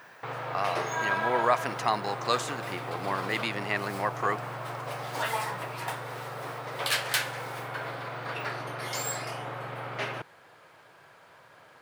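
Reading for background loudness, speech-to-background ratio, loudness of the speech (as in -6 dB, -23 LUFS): -33.5 LUFS, 2.5 dB, -31.0 LUFS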